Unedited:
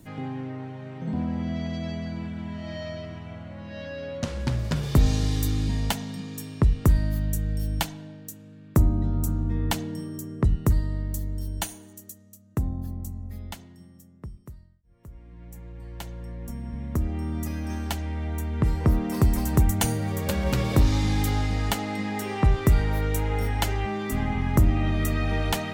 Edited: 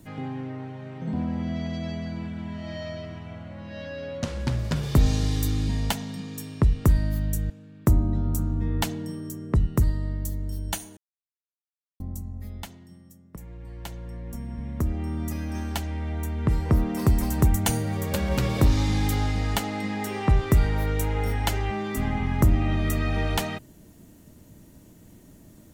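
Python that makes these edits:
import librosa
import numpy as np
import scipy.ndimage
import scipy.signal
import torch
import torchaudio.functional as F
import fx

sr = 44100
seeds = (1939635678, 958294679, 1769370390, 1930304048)

y = fx.edit(x, sr, fx.cut(start_s=7.5, length_s=0.89),
    fx.silence(start_s=11.86, length_s=1.03),
    fx.cut(start_s=14.25, length_s=1.26), tone=tone)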